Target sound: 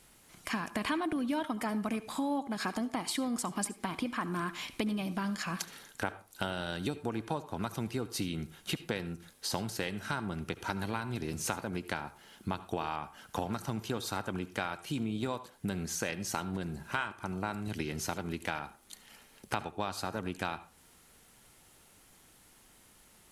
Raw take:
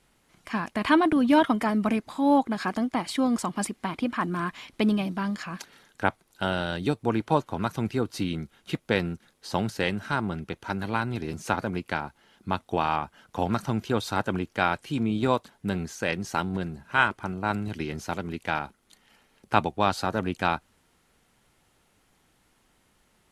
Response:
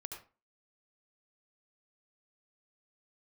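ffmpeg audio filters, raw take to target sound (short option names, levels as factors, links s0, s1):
-filter_complex "[0:a]highshelf=f=6000:g=11,acompressor=threshold=0.02:ratio=6,asplit=2[s0][s1];[1:a]atrim=start_sample=2205[s2];[s1][s2]afir=irnorm=-1:irlink=0,volume=0.531[s3];[s0][s3]amix=inputs=2:normalize=0"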